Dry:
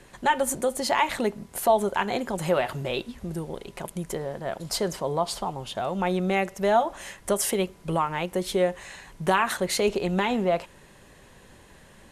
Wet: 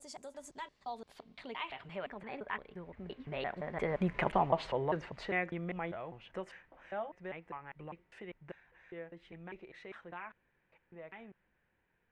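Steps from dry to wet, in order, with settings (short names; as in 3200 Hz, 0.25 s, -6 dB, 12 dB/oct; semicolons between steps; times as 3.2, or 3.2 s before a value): slices in reverse order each 0.186 s, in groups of 5; Doppler pass-by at 4.2, 26 m/s, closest 5.8 m; low-pass sweep 7400 Hz -> 2100 Hz, 0.16–2.27; gain +2 dB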